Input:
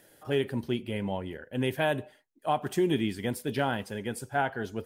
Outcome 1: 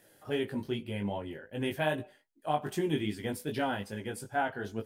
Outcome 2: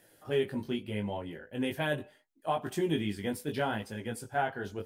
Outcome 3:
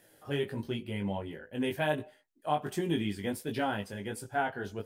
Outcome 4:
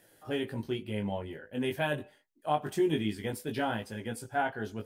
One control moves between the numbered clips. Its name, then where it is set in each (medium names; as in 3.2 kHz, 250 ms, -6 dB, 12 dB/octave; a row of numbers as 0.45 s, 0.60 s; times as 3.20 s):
chorus, rate: 2.5 Hz, 0.75 Hz, 1.4 Hz, 0.25 Hz